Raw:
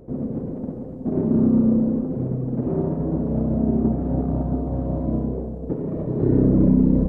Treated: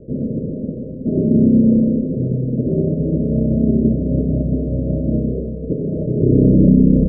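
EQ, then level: rippled Chebyshev low-pass 630 Hz, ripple 3 dB; +6.5 dB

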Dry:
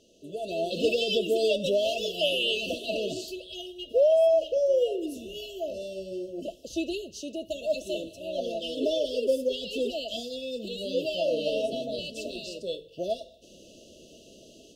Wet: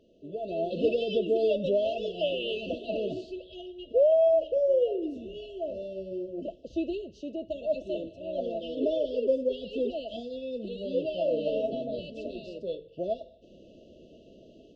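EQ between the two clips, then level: tape spacing loss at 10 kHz 37 dB; +1.5 dB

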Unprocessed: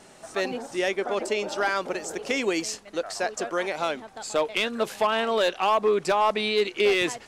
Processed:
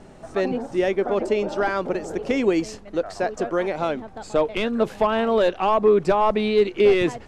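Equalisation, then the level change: tilt -3.5 dB/oct; +1.5 dB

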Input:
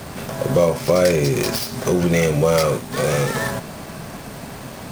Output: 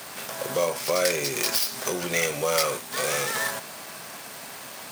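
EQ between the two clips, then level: HPF 1400 Hz 6 dB/oct; high shelf 9200 Hz +3.5 dB; 0.0 dB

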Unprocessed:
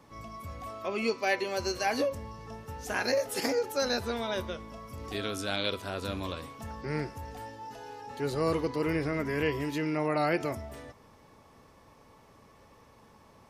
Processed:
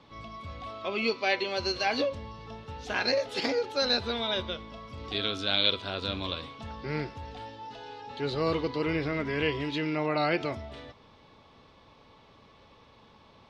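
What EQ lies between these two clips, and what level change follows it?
synth low-pass 3700 Hz, resonance Q 3.2; notch 1800 Hz, Q 20; 0.0 dB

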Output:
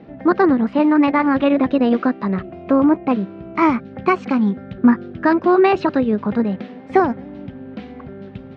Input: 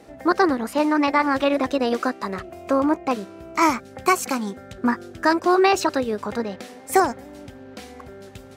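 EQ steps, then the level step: LPF 3400 Hz 24 dB/oct; bell 180 Hz +13.5 dB 1.5 oct; 0.0 dB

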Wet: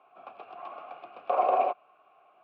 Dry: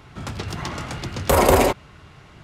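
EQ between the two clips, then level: vowel filter a; HPF 360 Hz 12 dB/oct; air absorption 430 m; +2.0 dB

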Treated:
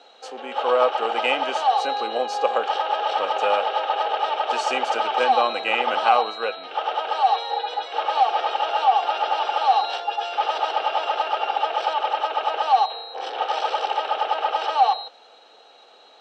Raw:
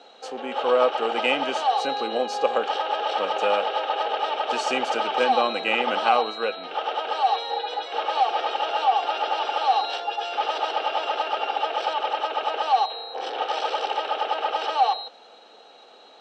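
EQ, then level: HPF 420 Hz 6 dB/oct; dynamic EQ 860 Hz, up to +4 dB, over -32 dBFS, Q 0.88; 0.0 dB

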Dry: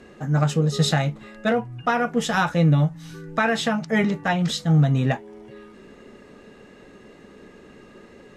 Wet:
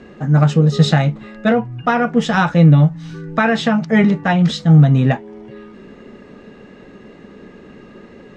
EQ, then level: air absorption 95 m; bell 190 Hz +4 dB 1.1 oct; +5.5 dB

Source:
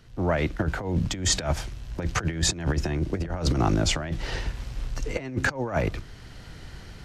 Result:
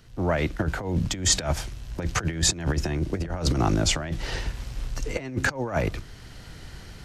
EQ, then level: high shelf 6300 Hz +6 dB; 0.0 dB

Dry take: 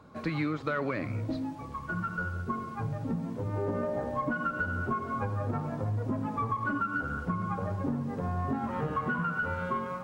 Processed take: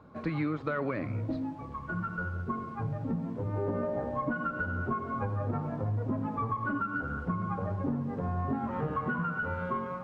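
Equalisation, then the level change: LPF 1800 Hz 6 dB/oct; 0.0 dB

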